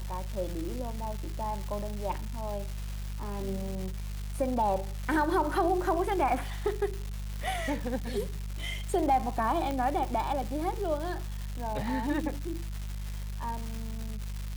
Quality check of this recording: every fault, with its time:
crackle 510/s -35 dBFS
hum 50 Hz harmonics 4 -36 dBFS
9.71 pop -20 dBFS

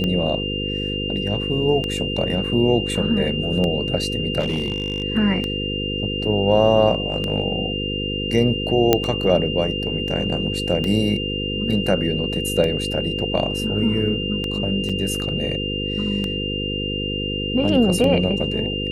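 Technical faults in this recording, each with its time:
buzz 50 Hz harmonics 10 -27 dBFS
tick 33 1/3 rpm -12 dBFS
tone 2800 Hz -26 dBFS
4.39–5.04 clipped -17.5 dBFS
8.93 pop -1 dBFS
14.89–14.9 gap 5.6 ms

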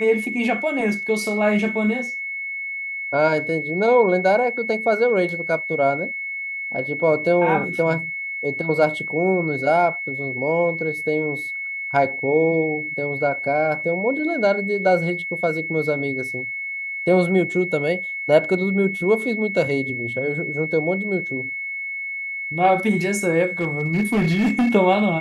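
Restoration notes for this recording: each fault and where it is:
tone 2200 Hz -26 dBFS
23.61–24.75 clipped -15 dBFS

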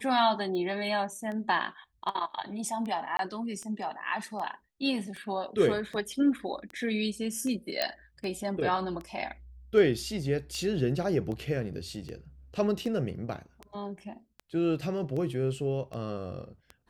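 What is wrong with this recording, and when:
tick 78 rpm -27 dBFS
3.17–3.19 gap 22 ms
7.82 pop -12 dBFS

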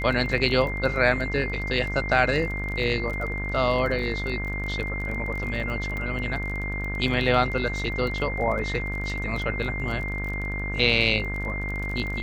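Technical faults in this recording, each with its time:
buzz 50 Hz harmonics 37 -31 dBFS
crackle 24/s -31 dBFS
tone 2100 Hz -31 dBFS
5.97 pop -20 dBFS

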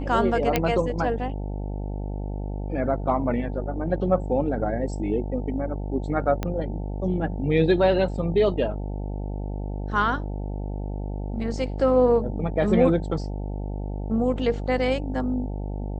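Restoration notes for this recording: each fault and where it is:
buzz 50 Hz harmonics 18 -30 dBFS
0.56 pop -6 dBFS
6.43 pop -13 dBFS

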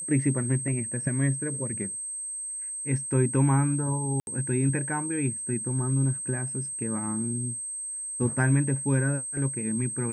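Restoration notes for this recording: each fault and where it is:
tone 8300 Hz -32 dBFS
4.2–4.27 gap 71 ms

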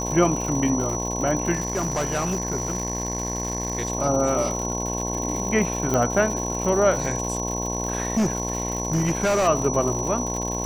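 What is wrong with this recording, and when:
buzz 60 Hz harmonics 18 -29 dBFS
crackle 190/s -28 dBFS
tone 5900 Hz -29 dBFS
1.53–3.9 clipped -20 dBFS
5.94 pop -10 dBFS
8.17–9.48 clipped -17.5 dBFS

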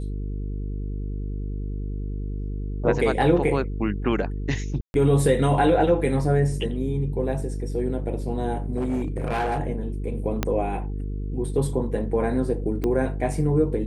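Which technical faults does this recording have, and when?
buzz 50 Hz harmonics 9 -29 dBFS
4.81–4.94 gap 0.131 s
8.77–9.6 clipped -21 dBFS
10.43 pop -8 dBFS
12.84 pop -15 dBFS

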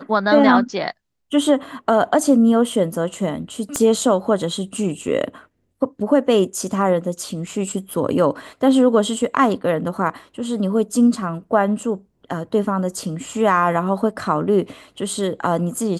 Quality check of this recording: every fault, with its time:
3.76 pop -7 dBFS

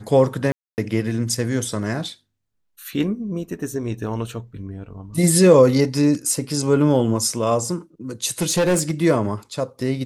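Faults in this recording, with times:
0.52–0.78 gap 0.259 s
8.41–8.91 clipped -14.5 dBFS

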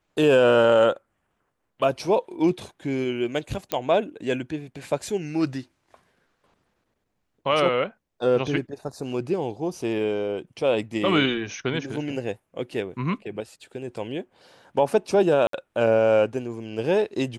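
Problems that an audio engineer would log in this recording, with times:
3.72 pop -9 dBFS
15.47–15.53 gap 63 ms

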